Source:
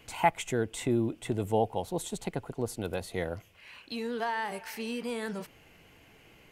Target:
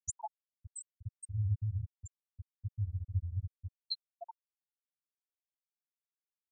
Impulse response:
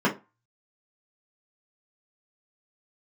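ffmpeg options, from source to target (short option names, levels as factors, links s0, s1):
-filter_complex "[0:a]acompressor=threshold=0.00794:ratio=12,highpass=f=72:w=0.5412,highpass=f=72:w=1.3066,bass=f=250:g=14,treble=f=4000:g=15,asplit=3[s0][s1][s2];[s1]asetrate=37084,aresample=44100,atempo=1.18921,volume=0.282[s3];[s2]asetrate=88200,aresample=44100,atempo=0.5,volume=0.398[s4];[s0][s3][s4]amix=inputs=3:normalize=0,asplit=2[s5][s6];[s6]aecho=0:1:224|448|672|896:0.0708|0.0396|0.0222|0.0124[s7];[s5][s7]amix=inputs=2:normalize=0,afftfilt=real='re*(1-between(b*sr/4096,110,590))':imag='im*(1-between(b*sr/4096,110,590))':win_size=4096:overlap=0.75,asplit=2[s8][s9];[s9]adelay=283,lowpass=f=830:p=1,volume=0.596,asplit=2[s10][s11];[s11]adelay=283,lowpass=f=830:p=1,volume=0.35,asplit=2[s12][s13];[s13]adelay=283,lowpass=f=830:p=1,volume=0.35,asplit=2[s14][s15];[s15]adelay=283,lowpass=f=830:p=1,volume=0.35[s16];[s10][s12][s14][s16]amix=inputs=4:normalize=0[s17];[s8][s17]amix=inputs=2:normalize=0,afftfilt=real='re*gte(hypot(re,im),0.0708)':imag='im*gte(hypot(re,im),0.0708)':win_size=1024:overlap=0.75,volume=2.51"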